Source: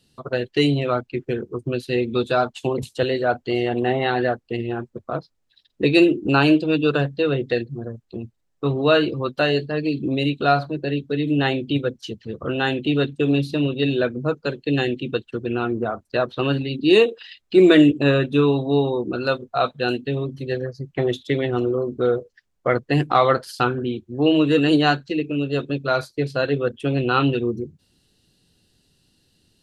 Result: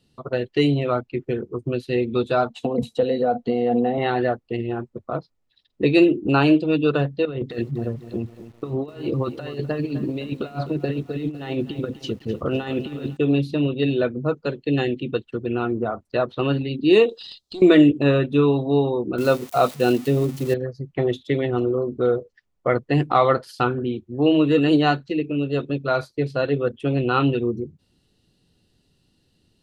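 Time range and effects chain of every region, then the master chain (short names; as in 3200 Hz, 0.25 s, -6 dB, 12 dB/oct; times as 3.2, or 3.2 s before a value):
2.5–3.98 compressor 5:1, threshold -26 dBFS + small resonant body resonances 230/490/700/3900 Hz, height 16 dB, ringing for 60 ms
7.25–13.17 negative-ratio compressor -25 dBFS, ratio -0.5 + lo-fi delay 0.254 s, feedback 55%, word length 7-bit, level -13 dB
17.09–17.62 resonant high shelf 3000 Hz +12 dB, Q 3 + tube stage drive 6 dB, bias 0.5 + compressor 10:1, threshold -29 dBFS
19.18–20.54 switching spikes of -21 dBFS + HPF 240 Hz 6 dB/oct + low shelf 480 Hz +11 dB
whole clip: high shelf 3400 Hz -8.5 dB; notch 1600 Hz, Q 11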